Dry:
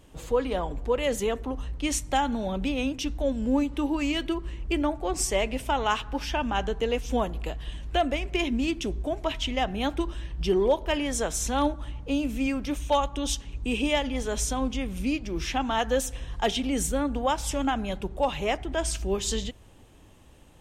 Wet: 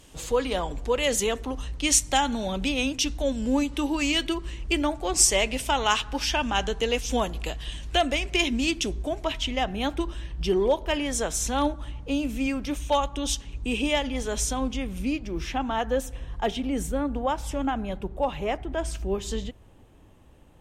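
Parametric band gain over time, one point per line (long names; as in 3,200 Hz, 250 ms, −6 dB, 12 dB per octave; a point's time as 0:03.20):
parametric band 6,500 Hz 2.8 octaves
0:08.71 +10.5 dB
0:09.42 +2 dB
0:14.55 +2 dB
0:15.89 −8 dB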